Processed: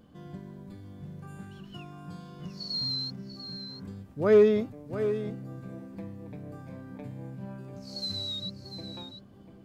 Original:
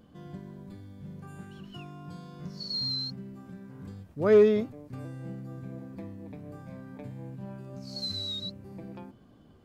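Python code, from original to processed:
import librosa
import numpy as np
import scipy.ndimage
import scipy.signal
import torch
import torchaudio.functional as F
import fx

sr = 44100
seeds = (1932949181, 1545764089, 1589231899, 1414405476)

y = x + 10.0 ** (-10.5 / 20.0) * np.pad(x, (int(693 * sr / 1000.0), 0))[:len(x)]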